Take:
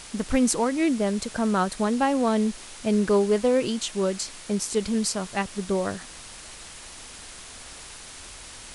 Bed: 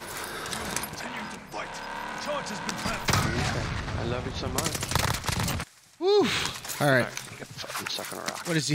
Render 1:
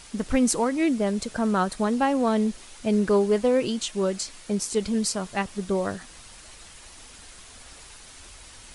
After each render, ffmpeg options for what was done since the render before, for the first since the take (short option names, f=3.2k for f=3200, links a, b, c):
-af "afftdn=nr=6:nf=-43"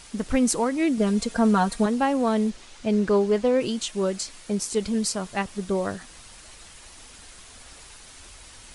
-filter_complex "[0:a]asettb=1/sr,asplit=3[a][b][c];[a]atrim=end=0.974[d];[b]atrim=start=0.97:end=1.86,asetpts=PTS-STARTPTS,afade=t=in:d=0.004:c=qsin,afade=t=out:st=0.886:d=0.004:c=qsin,aecho=1:1:4.3:0.82,atrim=end_sample=39249[e];[c]atrim=start=1.856[f];[d][e]acrossfade=d=0.004:c1=hsin:c2=qsin[g];[g][f]acrossfade=d=0.004:c1=qsin:c2=hsin,asettb=1/sr,asplit=3[h][i][j];[h]atrim=end=2.504[k];[i]atrim=start=2.5:end=3.61,asetpts=PTS-STARTPTS,afade=t=in:d=0.004:c=qsin,afade=t=out:st=1.106:d=0.004:c=qsin,lowpass=7.1k[l];[j]atrim=start=3.606[m];[k][l]acrossfade=d=0.004:c1=hsin:c2=qsin[n];[n][m]acrossfade=d=0.004:c1=qsin:c2=hsin"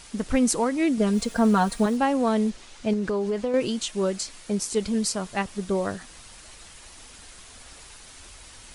-filter_complex "[0:a]asettb=1/sr,asplit=3[a][b][c];[a]atrim=end=1.134[d];[b]atrim=start=1.13:end=1.97,asetpts=PTS-STARTPTS,afade=t=in:d=0.004:c=qsin,afade=t=out:st=0.836:d=0.004:c=qsin,acrusher=bits=7:mix=0:aa=0.5[e];[c]atrim=start=1.966[f];[d][e]acrossfade=d=0.004:c1=hsin:c2=qsin[g];[g][f]acrossfade=d=0.004:c1=qsin:c2=hsin,asettb=1/sr,asplit=3[h][i][j];[h]atrim=end=2.934[k];[i]atrim=start=2.93:end=3.54,asetpts=PTS-STARTPTS,afade=t=in:d=0.004:c=qsin,afade=t=out:st=0.606:d=0.004:c=qsin,acompressor=threshold=-22dB:ratio=6:attack=3.2:release=140:knee=1:detection=peak[l];[j]atrim=start=3.536[m];[k][l]acrossfade=d=0.004:c1=hsin:c2=qsin[n];[n][m]acrossfade=d=0.004:c1=qsin:c2=hsin"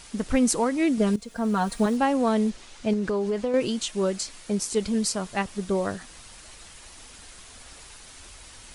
-filter_complex "[0:a]asplit=2[a][b];[a]atrim=end=1.16,asetpts=PTS-STARTPTS,afade=t=out:st=1.156:d=0.004:c=hsin:silence=0.141254[c];[b]atrim=start=1.16,asetpts=PTS-STARTPTS,afade=t=in:d=0.72:silence=0.141254[d];[c][d]concat=n=2:v=0:a=1"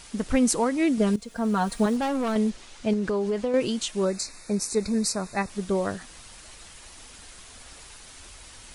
-filter_complex "[0:a]asettb=1/sr,asplit=3[a][b][c];[a]atrim=end=1.964[d];[b]atrim=start=1.96:end=2.36,asetpts=PTS-STARTPTS,afade=t=in:d=0.004:c=qsin,afade=t=out:st=0.396:d=0.004:c=qsin,asoftclip=type=hard:threshold=-23.5dB[e];[c]atrim=start=2.356[f];[d][e]acrossfade=d=0.004:c1=hsin:c2=qsin[g];[g][f]acrossfade=d=0.004:c1=qsin:c2=hsin,asettb=1/sr,asplit=3[h][i][j];[h]atrim=end=4.054[k];[i]atrim=start=4.05:end=5.5,asetpts=PTS-STARTPTS,afade=t=in:d=0.004:c=qsin,afade=t=out:st=1.446:d=0.004:c=qsin,asuperstop=centerf=3100:order=20:qfactor=3.4[l];[j]atrim=start=5.496[m];[k][l]acrossfade=d=0.004:c1=hsin:c2=qsin[n];[n][m]acrossfade=d=0.004:c1=qsin:c2=hsin"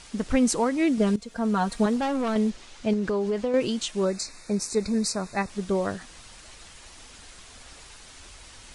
-af "lowpass=8.6k"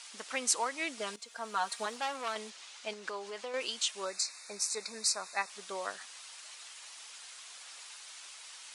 -af "highpass=1.1k,equalizer=f=1.7k:t=o:w=0.84:g=-3"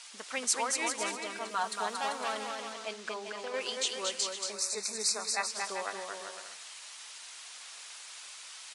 -af "aecho=1:1:230|391|503.7|582.6|637.8:0.631|0.398|0.251|0.158|0.1"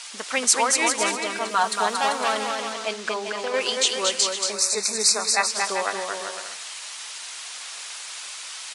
-af "volume=11dB,alimiter=limit=-1dB:level=0:latency=1"